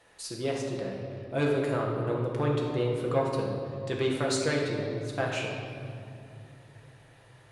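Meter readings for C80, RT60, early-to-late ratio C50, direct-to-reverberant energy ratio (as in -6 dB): 3.5 dB, 2.6 s, 1.5 dB, -2.0 dB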